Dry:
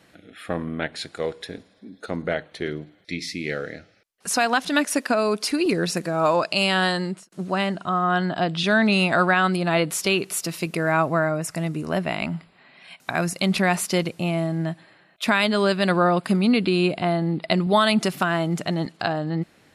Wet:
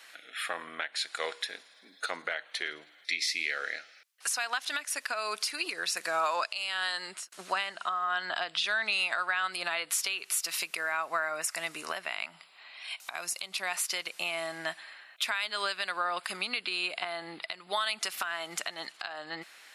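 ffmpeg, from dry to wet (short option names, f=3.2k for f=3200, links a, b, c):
-filter_complex "[0:a]asettb=1/sr,asplit=3[a][b][c];[a]atrim=end=12.314[d];[b]atrim=start=12.31:end=13.72,asetpts=PTS-STARTPTS,afade=t=in:d=0.004:c=qsin,afade=t=out:st=1.406:d=0.004:c=qsin,equalizer=f=1.7k:t=o:w=0.77:g=-7[e];[c]atrim=start=13.716[f];[d][e]acrossfade=d=0.004:c1=hsin:c2=qsin[g];[g][f]acrossfade=d=0.004:c1=qsin:c2=hsin,highpass=1.3k,acompressor=threshold=-33dB:ratio=6,alimiter=level_in=1.5dB:limit=-24dB:level=0:latency=1:release=454,volume=-1.5dB,volume=7.5dB"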